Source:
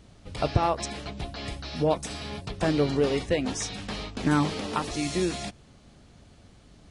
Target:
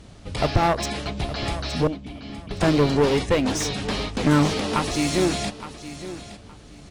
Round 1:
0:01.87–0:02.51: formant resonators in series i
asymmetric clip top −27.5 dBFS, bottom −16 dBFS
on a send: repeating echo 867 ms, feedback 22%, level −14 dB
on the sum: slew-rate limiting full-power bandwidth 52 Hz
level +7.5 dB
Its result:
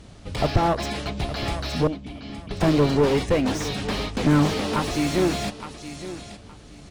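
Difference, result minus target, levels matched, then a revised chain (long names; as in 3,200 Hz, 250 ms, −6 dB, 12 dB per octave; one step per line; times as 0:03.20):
slew-rate limiting: distortion +11 dB
0:01.87–0:02.51: formant resonators in series i
asymmetric clip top −27.5 dBFS, bottom −16 dBFS
on a send: repeating echo 867 ms, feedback 22%, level −14 dB
on the sum: slew-rate limiting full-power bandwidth 137 Hz
level +7.5 dB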